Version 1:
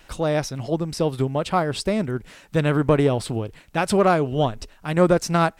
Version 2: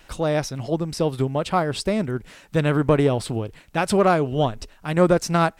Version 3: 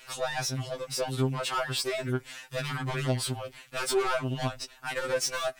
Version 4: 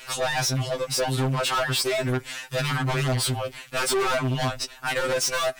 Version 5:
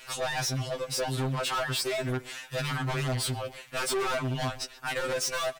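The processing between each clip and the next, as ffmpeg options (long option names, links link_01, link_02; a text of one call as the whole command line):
ffmpeg -i in.wav -af anull out.wav
ffmpeg -i in.wav -af "tiltshelf=frequency=780:gain=-6.5,asoftclip=type=tanh:threshold=-22dB,afftfilt=real='re*2.45*eq(mod(b,6),0)':imag='im*2.45*eq(mod(b,6),0)':win_size=2048:overlap=0.75" out.wav
ffmpeg -i in.wav -af "asoftclip=type=hard:threshold=-29.5dB,volume=8.5dB" out.wav
ffmpeg -i in.wav -filter_complex "[0:a]asplit=2[link_01][link_02];[link_02]adelay=130,highpass=300,lowpass=3400,asoftclip=type=hard:threshold=-30dB,volume=-13dB[link_03];[link_01][link_03]amix=inputs=2:normalize=0,volume=-5.5dB" out.wav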